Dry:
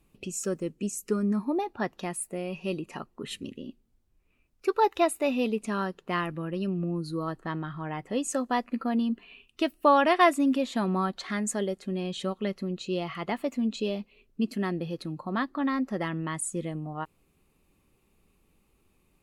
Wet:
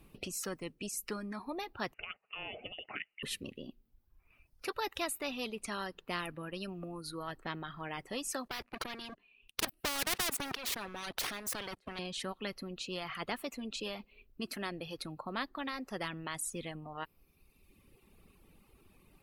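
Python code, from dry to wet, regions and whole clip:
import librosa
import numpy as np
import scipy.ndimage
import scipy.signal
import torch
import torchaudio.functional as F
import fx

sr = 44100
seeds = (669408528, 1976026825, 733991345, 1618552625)

y = fx.chain(x, sr, fx.highpass(hz=510.0, slope=12),
    fx.over_compress(threshold_db=-38.0, ratio=-0.5),
    fx.freq_invert(carrier_hz=3200), at=(1.94, 3.23))
y = fx.chain(y, sr, fx.level_steps(step_db=23),
    fx.leveller(passes=3),
    fx.spectral_comp(ratio=2.0), at=(8.48, 11.99))
y = fx.dereverb_blind(y, sr, rt60_s=1.2)
y = fx.peak_eq(y, sr, hz=7100.0, db=-8.5, octaves=0.48)
y = fx.spectral_comp(y, sr, ratio=2.0)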